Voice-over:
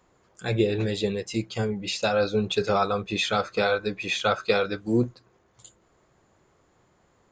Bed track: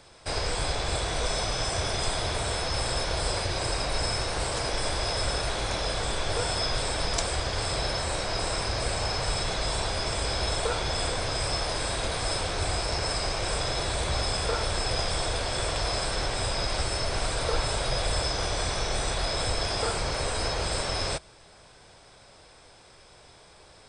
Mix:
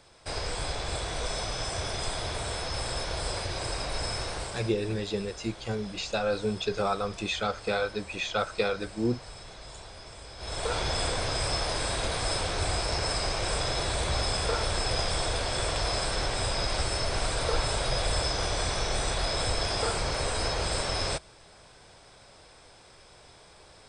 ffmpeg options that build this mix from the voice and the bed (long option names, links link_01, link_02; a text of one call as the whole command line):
ffmpeg -i stem1.wav -i stem2.wav -filter_complex "[0:a]adelay=4100,volume=-5dB[link_01];[1:a]volume=12dB,afade=type=out:start_time=4.28:duration=0.49:silence=0.237137,afade=type=in:start_time=10.37:duration=0.41:silence=0.158489[link_02];[link_01][link_02]amix=inputs=2:normalize=0" out.wav